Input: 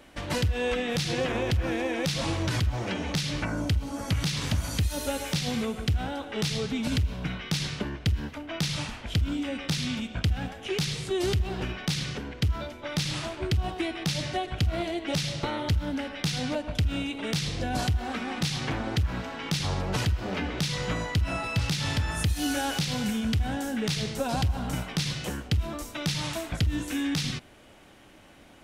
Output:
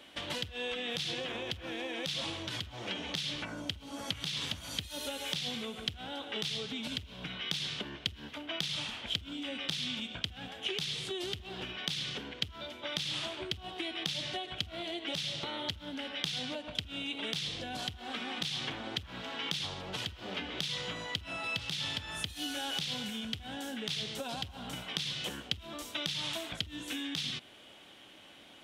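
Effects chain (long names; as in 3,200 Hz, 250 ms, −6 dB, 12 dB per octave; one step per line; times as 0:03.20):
downward compressor, threshold −32 dBFS, peak gain reduction 11 dB
high-pass filter 220 Hz 6 dB per octave
parametric band 3,300 Hz +11.5 dB 0.65 octaves
level −3.5 dB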